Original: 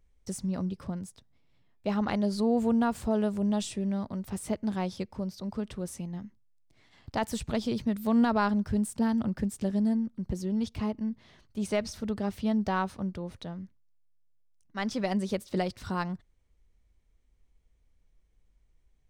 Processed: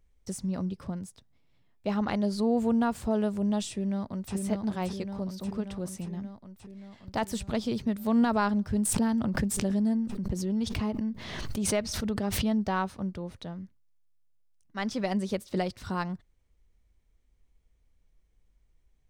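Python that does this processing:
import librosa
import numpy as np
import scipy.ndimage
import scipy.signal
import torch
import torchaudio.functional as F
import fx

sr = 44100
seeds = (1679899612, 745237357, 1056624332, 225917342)

y = fx.echo_throw(x, sr, start_s=3.69, length_s=0.65, ms=580, feedback_pct=70, wet_db=-3.5)
y = fx.pre_swell(y, sr, db_per_s=36.0, at=(8.85, 12.59))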